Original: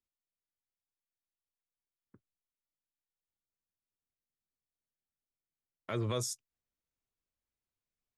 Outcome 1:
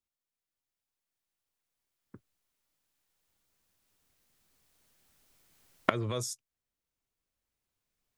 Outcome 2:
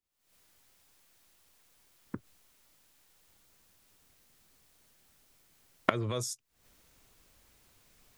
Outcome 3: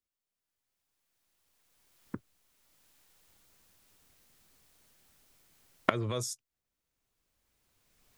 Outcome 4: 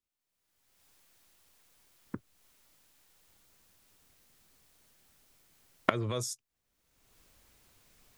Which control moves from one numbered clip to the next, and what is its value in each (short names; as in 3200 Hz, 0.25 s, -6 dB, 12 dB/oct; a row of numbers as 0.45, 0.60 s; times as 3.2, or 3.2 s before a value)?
recorder AGC, rising by: 5.1, 85, 14, 34 dB/s